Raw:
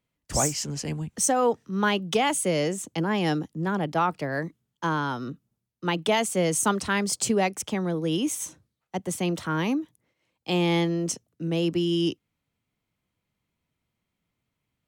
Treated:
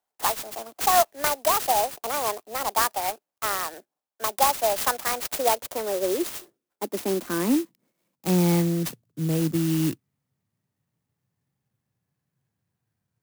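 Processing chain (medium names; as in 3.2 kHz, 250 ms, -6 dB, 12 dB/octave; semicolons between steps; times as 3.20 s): gliding tape speed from 151% -> 74%; high-pass sweep 740 Hz -> 120 Hz, 5.10–8.96 s; sampling jitter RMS 0.091 ms; trim -1.5 dB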